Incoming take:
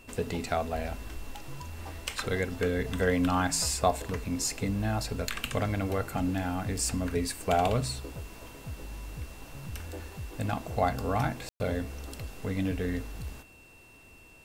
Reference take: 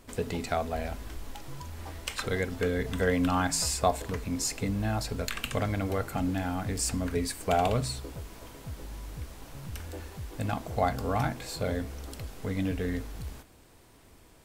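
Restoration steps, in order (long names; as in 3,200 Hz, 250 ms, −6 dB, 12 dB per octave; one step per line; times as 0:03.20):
notch filter 2,700 Hz, Q 30
ambience match 0:11.49–0:11.60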